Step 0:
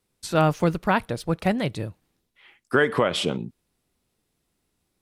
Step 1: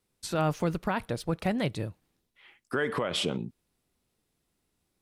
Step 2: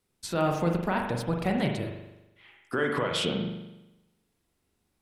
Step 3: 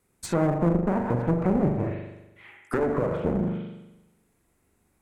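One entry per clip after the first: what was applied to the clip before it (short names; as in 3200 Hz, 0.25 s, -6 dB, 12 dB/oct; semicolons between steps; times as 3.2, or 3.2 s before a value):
limiter -15.5 dBFS, peak gain reduction 7.5 dB; gain -3 dB
reverb RT60 0.95 s, pre-delay 41 ms, DRR 2 dB
treble ducked by the level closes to 600 Hz, closed at -24.5 dBFS; one-sided clip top -34.5 dBFS; band shelf 4000 Hz -8.5 dB 1.2 oct; gain +7.5 dB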